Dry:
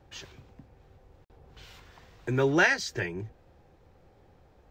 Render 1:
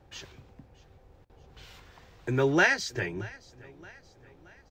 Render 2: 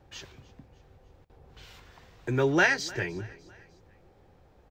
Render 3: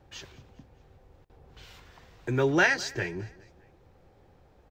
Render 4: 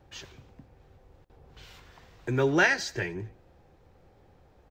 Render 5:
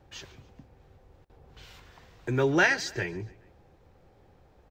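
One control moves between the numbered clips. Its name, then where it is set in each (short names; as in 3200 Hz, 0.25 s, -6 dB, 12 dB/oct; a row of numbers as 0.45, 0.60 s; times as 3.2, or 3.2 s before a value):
feedback echo, time: 624, 302, 206, 84, 140 ms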